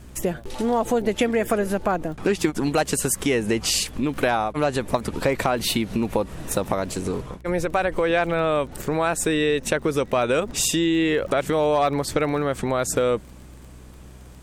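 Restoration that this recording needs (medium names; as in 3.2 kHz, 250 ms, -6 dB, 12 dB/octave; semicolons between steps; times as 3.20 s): de-click; de-hum 62.8 Hz, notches 7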